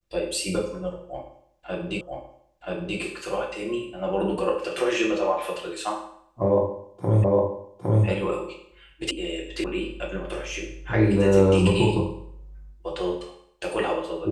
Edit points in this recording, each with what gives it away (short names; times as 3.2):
2.01 repeat of the last 0.98 s
7.24 repeat of the last 0.81 s
9.11 sound cut off
9.64 sound cut off